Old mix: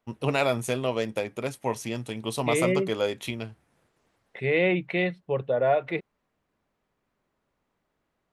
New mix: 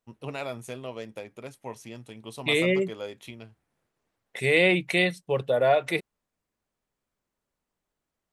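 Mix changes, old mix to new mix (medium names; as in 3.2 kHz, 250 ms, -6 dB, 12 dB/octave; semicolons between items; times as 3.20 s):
first voice -10.0 dB; second voice: remove distance through air 420 m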